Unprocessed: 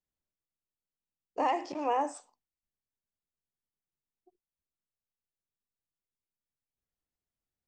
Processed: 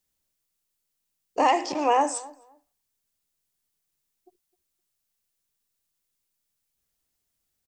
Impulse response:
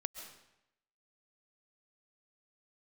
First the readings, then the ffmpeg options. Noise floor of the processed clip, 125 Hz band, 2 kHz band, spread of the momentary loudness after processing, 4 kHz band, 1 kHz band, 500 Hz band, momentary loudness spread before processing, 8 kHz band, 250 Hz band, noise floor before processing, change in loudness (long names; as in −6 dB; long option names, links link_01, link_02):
−79 dBFS, can't be measured, +10.0 dB, 11 LU, +12.5 dB, +8.0 dB, +8.0 dB, 13 LU, +16.0 dB, +7.5 dB, below −85 dBFS, +8.0 dB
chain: -filter_complex "[0:a]highshelf=frequency=3500:gain=10.5,asplit=2[link_01][link_02];[link_02]adelay=258,lowpass=frequency=1400:poles=1,volume=-19.5dB,asplit=2[link_03][link_04];[link_04]adelay=258,lowpass=frequency=1400:poles=1,volume=0.19[link_05];[link_01][link_03][link_05]amix=inputs=3:normalize=0,volume=7.5dB"